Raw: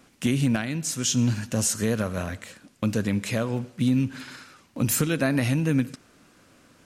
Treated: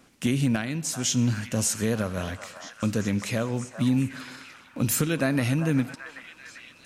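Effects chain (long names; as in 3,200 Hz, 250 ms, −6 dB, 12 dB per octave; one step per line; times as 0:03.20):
echo through a band-pass that steps 392 ms, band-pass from 970 Hz, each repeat 0.7 octaves, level −5.5 dB
level −1 dB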